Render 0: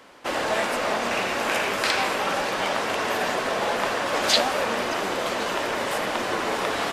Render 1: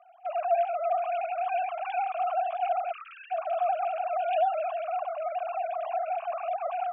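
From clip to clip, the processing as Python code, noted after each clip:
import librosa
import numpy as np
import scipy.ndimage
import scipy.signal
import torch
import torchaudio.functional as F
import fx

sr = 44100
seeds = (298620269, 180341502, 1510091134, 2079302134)

y = fx.sine_speech(x, sr)
y = fx.vowel_filter(y, sr, vowel='a')
y = fx.spec_erase(y, sr, start_s=2.92, length_s=0.39, low_hz=460.0, high_hz=1100.0)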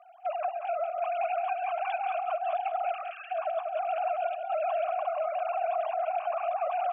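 y = fx.over_compress(x, sr, threshold_db=-30.0, ratio=-0.5)
y = fx.echo_feedback(y, sr, ms=186, feedback_pct=17, wet_db=-7.5)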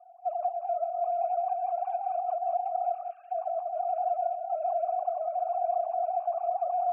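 y = fx.bandpass_q(x, sr, hz=710.0, q=8.5)
y = F.gain(torch.from_numpy(y), 3.0).numpy()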